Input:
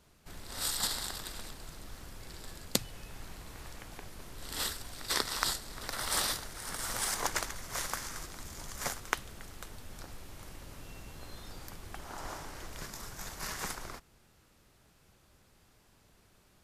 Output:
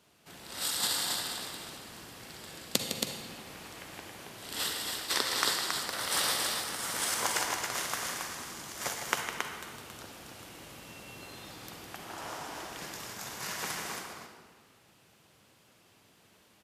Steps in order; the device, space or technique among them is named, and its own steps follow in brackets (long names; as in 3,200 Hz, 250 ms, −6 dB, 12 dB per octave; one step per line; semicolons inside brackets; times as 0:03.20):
stadium PA (high-pass filter 150 Hz 12 dB per octave; parametric band 2,900 Hz +4.5 dB 0.58 octaves; loudspeakers that aren't time-aligned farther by 54 metres −8 dB, 94 metres −4 dB; convolution reverb RT60 1.6 s, pre-delay 40 ms, DRR 4.5 dB)